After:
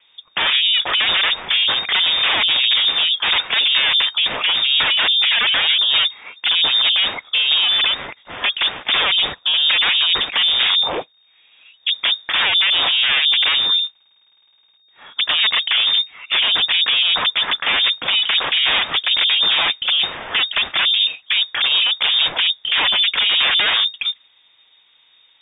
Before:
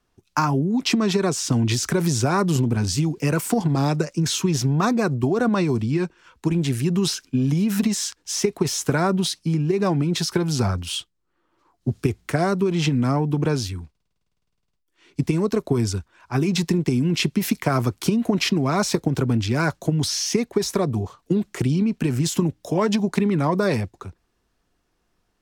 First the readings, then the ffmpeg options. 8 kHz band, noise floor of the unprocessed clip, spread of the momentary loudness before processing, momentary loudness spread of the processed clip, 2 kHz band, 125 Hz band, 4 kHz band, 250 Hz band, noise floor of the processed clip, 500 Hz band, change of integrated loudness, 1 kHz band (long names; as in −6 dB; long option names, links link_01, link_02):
below −40 dB, −72 dBFS, 5 LU, 5 LU, +14.0 dB, below −25 dB, +19.5 dB, −22.0 dB, −56 dBFS, −10.0 dB, +7.5 dB, +2.0 dB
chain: -af "aeval=exprs='0.531*sin(PI/2*8.91*val(0)/0.531)':channel_layout=same,acrusher=bits=8:mix=0:aa=0.000001,lowpass=frequency=3100:width_type=q:width=0.5098,lowpass=frequency=3100:width_type=q:width=0.6013,lowpass=frequency=3100:width_type=q:width=0.9,lowpass=frequency=3100:width_type=q:width=2.563,afreqshift=-3700,volume=-7.5dB"